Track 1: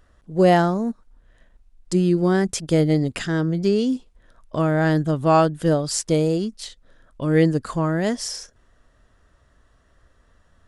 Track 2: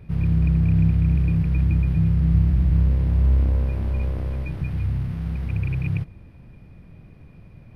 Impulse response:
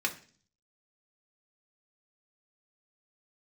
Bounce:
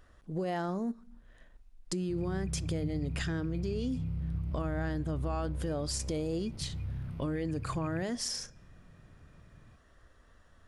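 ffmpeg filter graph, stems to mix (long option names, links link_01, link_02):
-filter_complex "[0:a]alimiter=limit=-18.5dB:level=0:latency=1:release=17,volume=-3.5dB,asplit=2[link_01][link_02];[link_02]volume=-17dB[link_03];[1:a]bandreject=frequency=1700:width=6,adelay=2000,volume=-12dB[link_04];[2:a]atrim=start_sample=2205[link_05];[link_03][link_05]afir=irnorm=-1:irlink=0[link_06];[link_01][link_04][link_06]amix=inputs=3:normalize=0,acompressor=threshold=-33dB:ratio=2.5"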